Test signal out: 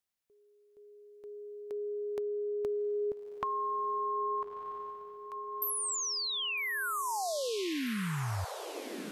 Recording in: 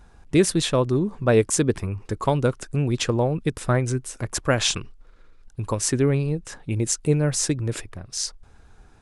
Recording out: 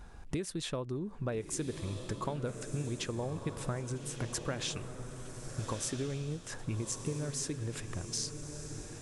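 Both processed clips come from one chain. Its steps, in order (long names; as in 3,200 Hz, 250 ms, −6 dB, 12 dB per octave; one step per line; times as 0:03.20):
downward compressor 8 to 1, threshold −34 dBFS
feedback delay with all-pass diffusion 1,292 ms, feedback 42%, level −7.5 dB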